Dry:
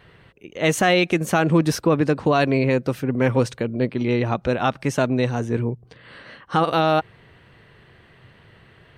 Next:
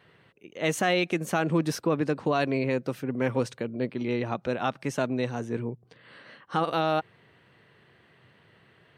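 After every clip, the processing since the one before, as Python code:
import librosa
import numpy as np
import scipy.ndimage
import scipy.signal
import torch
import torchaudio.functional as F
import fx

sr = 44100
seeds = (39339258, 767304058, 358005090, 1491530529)

y = scipy.signal.sosfilt(scipy.signal.butter(2, 130.0, 'highpass', fs=sr, output='sos'), x)
y = y * librosa.db_to_amplitude(-7.0)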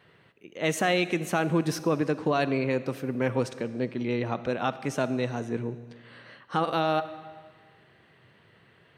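y = fx.rev_freeverb(x, sr, rt60_s=1.6, hf_ratio=0.95, predelay_ms=5, drr_db=13.5)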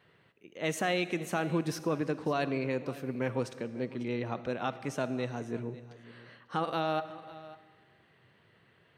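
y = x + 10.0 ** (-18.5 / 20.0) * np.pad(x, (int(548 * sr / 1000.0), 0))[:len(x)]
y = y * librosa.db_to_amplitude(-5.5)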